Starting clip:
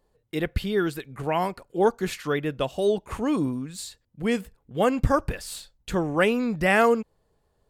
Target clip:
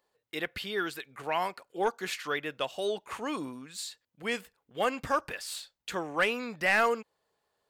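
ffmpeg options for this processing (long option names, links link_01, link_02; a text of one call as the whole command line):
ffmpeg -i in.wav -af "highpass=frequency=1500:poles=1,asoftclip=type=tanh:threshold=-18dB,equalizer=frequency=11000:width=0.52:gain=-6.5,volume=2.5dB" out.wav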